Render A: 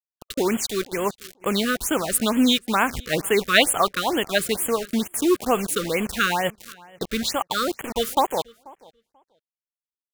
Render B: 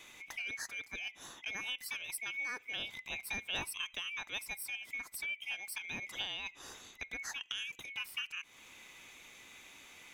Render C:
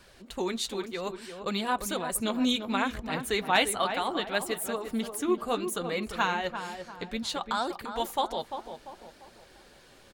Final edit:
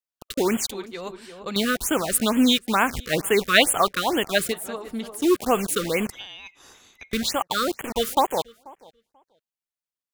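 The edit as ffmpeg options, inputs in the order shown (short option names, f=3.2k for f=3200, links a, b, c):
-filter_complex "[2:a]asplit=2[a][b];[0:a]asplit=4[c][d][e][f];[c]atrim=end=0.712[g];[a]atrim=start=0.708:end=1.562[h];[d]atrim=start=1.558:end=4.54[i];[b]atrim=start=4.5:end=5.24[j];[e]atrim=start=5.2:end=6.102[k];[1:a]atrim=start=6.098:end=7.132[l];[f]atrim=start=7.128[m];[g][h]acrossfade=d=0.004:c1=hsin:c2=hsin[n];[n][i]acrossfade=d=0.004:c1=hsin:c2=hsin[o];[o][j]acrossfade=d=0.04:c1=tri:c2=tri[p];[p][k]acrossfade=d=0.04:c1=tri:c2=tri[q];[q][l]acrossfade=d=0.004:c1=hsin:c2=hsin[r];[r][m]acrossfade=d=0.004:c1=hsin:c2=hsin"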